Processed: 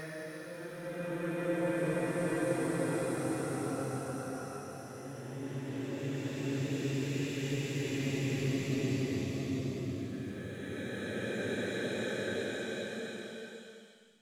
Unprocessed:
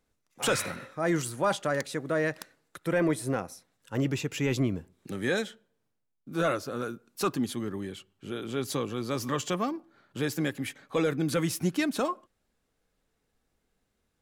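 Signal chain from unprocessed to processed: coarse spectral quantiser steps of 15 dB; Paulstretch 4.2×, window 1.00 s, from 2.48 s; trim -4.5 dB

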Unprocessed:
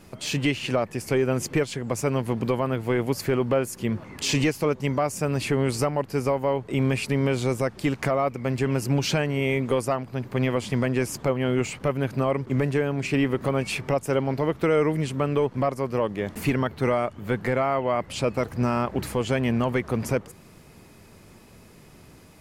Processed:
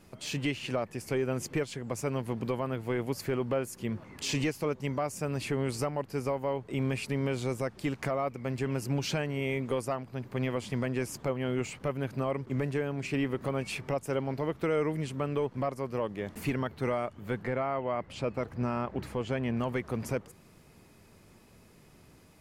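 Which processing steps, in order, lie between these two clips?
17.43–19.57 s: treble shelf 5.7 kHz -12 dB; trim -7.5 dB

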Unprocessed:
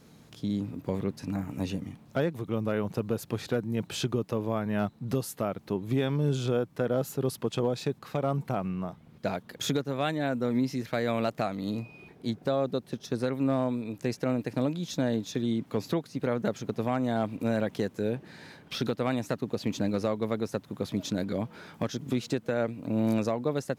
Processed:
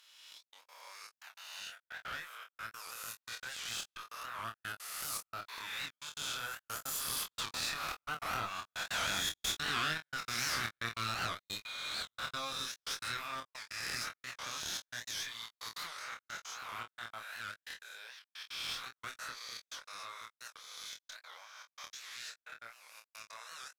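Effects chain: reverse spectral sustain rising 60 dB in 1.76 s; Doppler pass-by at 10.03 s, 6 m/s, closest 3.8 m; high-pass 1.2 kHz 24 dB/octave; compression 5:1, threshold -47 dBFS, peak gain reduction 17.5 dB; one-sided clip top -57 dBFS; trance gate "xxxxx..x." 197 bpm -60 dB; on a send: early reflections 26 ms -4 dB, 45 ms -13.5 dB; on the sum: warped record 78 rpm, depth 160 cents; trim +16 dB

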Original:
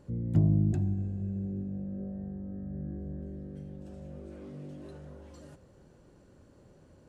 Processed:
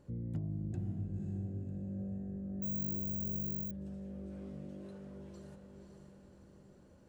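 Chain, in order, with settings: compression 6:1, threshold -30 dBFS, peak gain reduction 11 dB; echo that smears into a reverb 546 ms, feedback 48%, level -5 dB; 2.62–3.71 s: careless resampling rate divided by 2×, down filtered, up zero stuff; trim -5.5 dB

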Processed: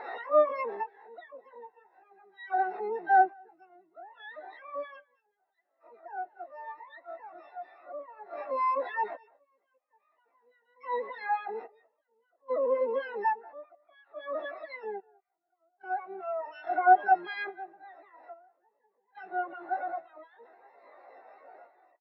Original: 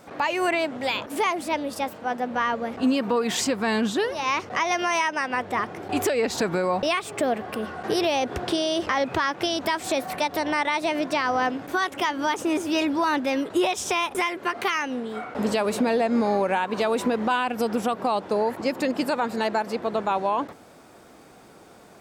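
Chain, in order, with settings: one-bit comparator; rippled Chebyshev low-pass 1.7 kHz, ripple 9 dB; pitch shift +8.5 st; random-step tremolo 1.2 Hz, depth 90%; high-pass 380 Hz 12 dB/octave; harmony voices -12 st -9 dB, -3 st -17 dB, +12 st -4 dB; speakerphone echo 200 ms, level -10 dB; spectral contrast expander 2.5:1; trim +7.5 dB

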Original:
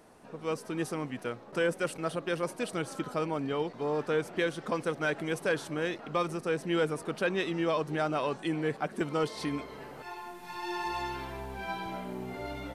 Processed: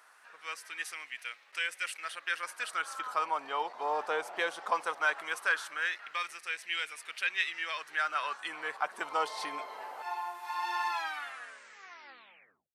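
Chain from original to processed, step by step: tape stop on the ending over 1.85 s; LFO high-pass sine 0.18 Hz 800–2200 Hz

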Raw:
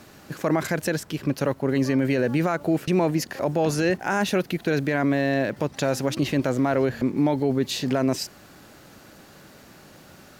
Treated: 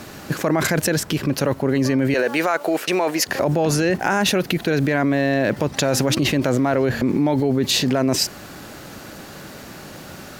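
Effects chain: 2.14–3.27 s: high-pass 550 Hz 12 dB/octave; in parallel at +3 dB: compressor with a negative ratio -29 dBFS, ratio -1

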